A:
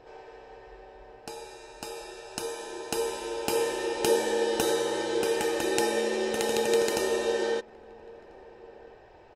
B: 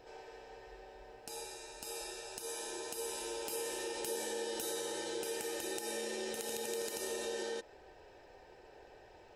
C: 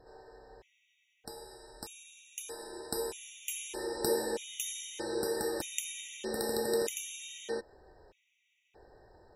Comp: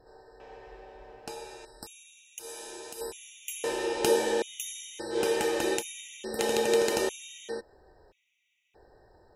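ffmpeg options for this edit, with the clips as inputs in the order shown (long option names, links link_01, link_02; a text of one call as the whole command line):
ffmpeg -i take0.wav -i take1.wav -i take2.wav -filter_complex "[0:a]asplit=4[link_01][link_02][link_03][link_04];[2:a]asplit=6[link_05][link_06][link_07][link_08][link_09][link_10];[link_05]atrim=end=0.402[link_11];[link_01]atrim=start=0.398:end=1.652[link_12];[link_06]atrim=start=1.648:end=2.392[link_13];[1:a]atrim=start=2.388:end=3.012[link_14];[link_07]atrim=start=3.008:end=3.642[link_15];[link_02]atrim=start=3.638:end=4.422[link_16];[link_08]atrim=start=4.418:end=5.2[link_17];[link_03]atrim=start=5.1:end=5.83[link_18];[link_09]atrim=start=5.73:end=6.392[link_19];[link_04]atrim=start=6.388:end=7.092[link_20];[link_10]atrim=start=7.088[link_21];[link_11][link_12]acrossfade=duration=0.004:curve1=hsin:curve2=hsin[link_22];[link_22][link_13]acrossfade=duration=0.004:curve1=hsin:curve2=hsin[link_23];[link_23][link_14]acrossfade=duration=0.004:curve1=hsin:curve2=hsin[link_24];[link_24][link_15]acrossfade=duration=0.004:curve1=hsin:curve2=hsin[link_25];[link_25][link_16]acrossfade=duration=0.004:curve1=hsin:curve2=hsin[link_26];[link_26][link_17]acrossfade=duration=0.004:curve1=hsin:curve2=hsin[link_27];[link_27][link_18]acrossfade=duration=0.1:curve1=tri:curve2=tri[link_28];[link_28][link_19]acrossfade=duration=0.1:curve1=tri:curve2=tri[link_29];[link_29][link_20]acrossfade=duration=0.004:curve1=hsin:curve2=hsin[link_30];[link_30][link_21]acrossfade=duration=0.004:curve1=hsin:curve2=hsin" out.wav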